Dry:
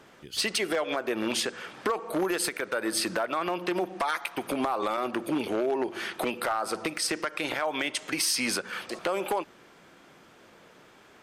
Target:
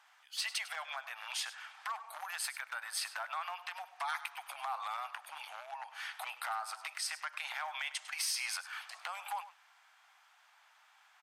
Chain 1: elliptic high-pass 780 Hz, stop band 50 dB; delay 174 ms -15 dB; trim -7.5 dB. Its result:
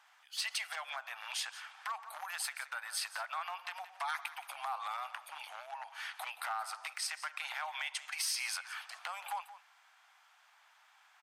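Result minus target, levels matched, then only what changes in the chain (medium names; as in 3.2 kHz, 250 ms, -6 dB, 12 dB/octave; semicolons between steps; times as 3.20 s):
echo 73 ms late
change: delay 101 ms -15 dB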